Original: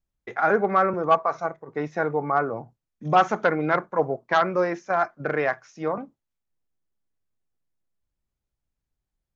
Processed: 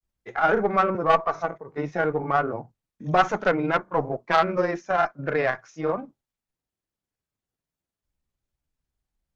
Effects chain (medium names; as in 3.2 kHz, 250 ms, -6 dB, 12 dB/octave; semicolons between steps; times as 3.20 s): single-diode clipper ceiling -14 dBFS; granulator, spray 24 ms, pitch spread up and down by 0 st; trim +2.5 dB